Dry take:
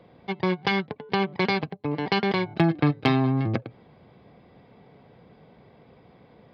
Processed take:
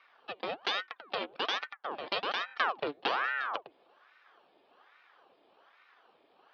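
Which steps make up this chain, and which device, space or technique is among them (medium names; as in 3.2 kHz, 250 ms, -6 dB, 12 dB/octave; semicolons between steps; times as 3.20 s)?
voice changer toy (ring modulator with a swept carrier 910 Hz, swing 85%, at 1.2 Hz; cabinet simulation 540–4700 Hz, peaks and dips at 610 Hz -4 dB, 950 Hz -6 dB, 1.4 kHz -4 dB, 2 kHz -8 dB, 3.1 kHz +3 dB); trim -2 dB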